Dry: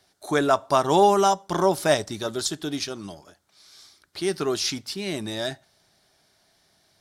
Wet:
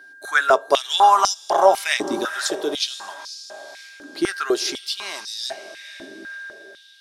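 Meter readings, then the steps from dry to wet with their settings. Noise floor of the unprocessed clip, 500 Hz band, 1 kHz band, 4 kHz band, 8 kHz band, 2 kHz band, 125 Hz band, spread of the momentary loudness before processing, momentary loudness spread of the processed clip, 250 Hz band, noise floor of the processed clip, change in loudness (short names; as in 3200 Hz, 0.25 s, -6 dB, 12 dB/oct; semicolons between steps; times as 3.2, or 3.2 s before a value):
-65 dBFS, +1.0 dB, +5.0 dB, +5.5 dB, +3.0 dB, +9.0 dB, -16.5 dB, 13 LU, 22 LU, -2.0 dB, -46 dBFS, +3.5 dB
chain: diffused feedback echo 0.499 s, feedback 45%, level -12.5 dB; whine 1600 Hz -44 dBFS; stepped high-pass 4 Hz 290–4900 Hz; gain +1 dB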